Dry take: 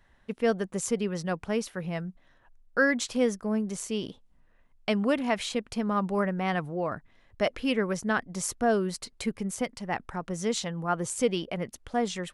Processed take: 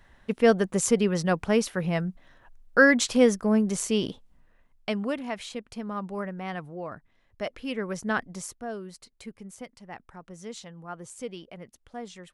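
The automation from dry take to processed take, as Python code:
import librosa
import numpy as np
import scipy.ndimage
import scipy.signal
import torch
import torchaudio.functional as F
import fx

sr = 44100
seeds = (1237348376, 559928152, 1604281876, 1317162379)

y = fx.gain(x, sr, db=fx.line((4.09, 6.0), (5.29, -6.0), (7.66, -6.0), (8.23, 1.0), (8.59, -11.0)))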